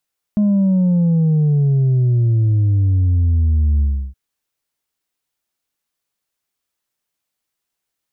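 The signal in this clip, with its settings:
bass drop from 210 Hz, over 3.77 s, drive 2.5 dB, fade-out 0.33 s, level −12 dB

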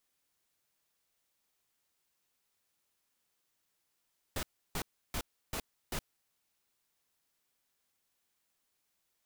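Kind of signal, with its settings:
noise bursts pink, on 0.07 s, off 0.32 s, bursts 5, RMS −36 dBFS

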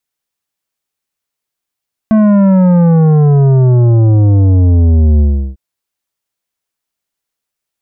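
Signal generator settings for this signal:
bass drop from 220 Hz, over 3.45 s, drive 10.5 dB, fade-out 0.36 s, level −6 dB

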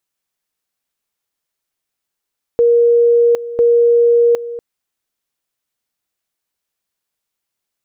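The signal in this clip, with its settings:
tone at two levels in turn 472 Hz −7.5 dBFS, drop 15 dB, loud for 0.76 s, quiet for 0.24 s, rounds 2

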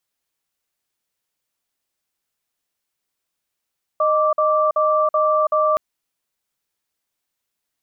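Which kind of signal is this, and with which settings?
tone pair in a cadence 618 Hz, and 1,170 Hz, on 0.33 s, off 0.05 s, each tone −17 dBFS 1.77 s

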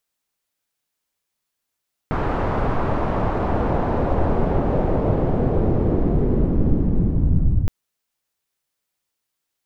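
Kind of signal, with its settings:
filter sweep on noise pink, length 5.57 s lowpass, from 1,100 Hz, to 100 Hz, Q 1.2, linear, gain ramp +6 dB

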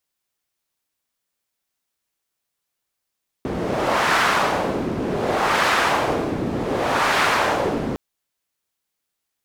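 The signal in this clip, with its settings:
wind from filtered noise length 4.51 s, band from 270 Hz, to 1,400 Hz, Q 1.1, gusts 3, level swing 6.5 dB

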